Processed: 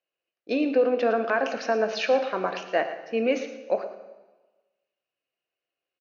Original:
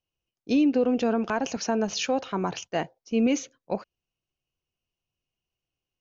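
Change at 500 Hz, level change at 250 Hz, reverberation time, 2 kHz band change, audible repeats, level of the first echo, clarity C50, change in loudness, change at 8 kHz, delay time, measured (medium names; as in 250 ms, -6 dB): +4.5 dB, -5.5 dB, 1.2 s, +5.5 dB, 1, -13.5 dB, 9.0 dB, +1.0 dB, no reading, 112 ms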